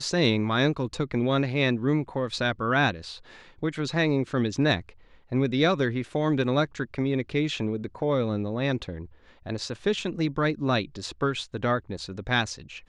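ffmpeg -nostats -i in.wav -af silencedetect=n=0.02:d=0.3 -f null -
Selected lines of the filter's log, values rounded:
silence_start: 3.15
silence_end: 3.63 | silence_duration: 0.47
silence_start: 4.89
silence_end: 5.32 | silence_duration: 0.43
silence_start: 9.05
silence_end: 9.46 | silence_duration: 0.41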